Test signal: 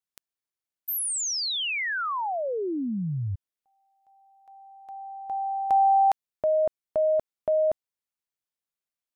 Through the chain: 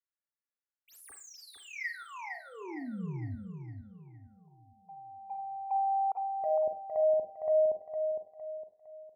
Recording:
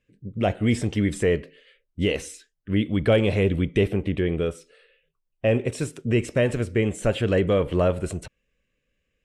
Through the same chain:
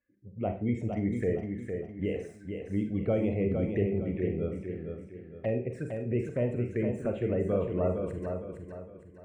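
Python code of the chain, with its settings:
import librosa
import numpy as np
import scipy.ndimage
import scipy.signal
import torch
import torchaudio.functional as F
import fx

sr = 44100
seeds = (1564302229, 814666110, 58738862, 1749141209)

p1 = scipy.signal.medfilt(x, 3)
p2 = fx.spec_gate(p1, sr, threshold_db=-30, keep='strong')
p3 = scipy.signal.sosfilt(scipy.signal.butter(2, 59.0, 'highpass', fs=sr, output='sos'), p2)
p4 = fx.high_shelf_res(p3, sr, hz=2400.0, db=-10.0, q=3.0)
p5 = fx.env_flanger(p4, sr, rest_ms=3.5, full_db=-21.0)
p6 = p5 + fx.echo_feedback(p5, sr, ms=459, feedback_pct=38, wet_db=-6.0, dry=0)
p7 = fx.rev_schroeder(p6, sr, rt60_s=0.33, comb_ms=33, drr_db=6.0)
y = F.gain(torch.from_numpy(p7), -8.5).numpy()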